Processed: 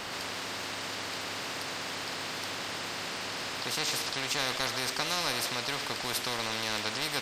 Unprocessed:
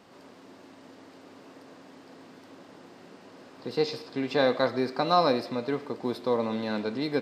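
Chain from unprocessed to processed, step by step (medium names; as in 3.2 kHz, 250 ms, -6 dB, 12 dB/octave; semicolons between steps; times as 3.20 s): peaking EQ 240 Hz -14.5 dB 2.9 oct; spectrum-flattening compressor 4:1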